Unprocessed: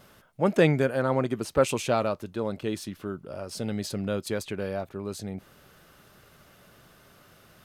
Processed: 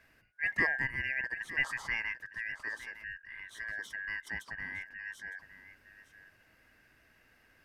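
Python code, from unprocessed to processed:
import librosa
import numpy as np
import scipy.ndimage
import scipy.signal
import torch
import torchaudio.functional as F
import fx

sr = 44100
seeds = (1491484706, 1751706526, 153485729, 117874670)

y = fx.band_shuffle(x, sr, order='2143')
y = fx.high_shelf(y, sr, hz=2300.0, db=-11.0)
y = y + 10.0 ** (-14.5 / 20.0) * np.pad(y, (int(910 * sr / 1000.0), 0))[:len(y)]
y = F.gain(torch.from_numpy(y), -5.5).numpy()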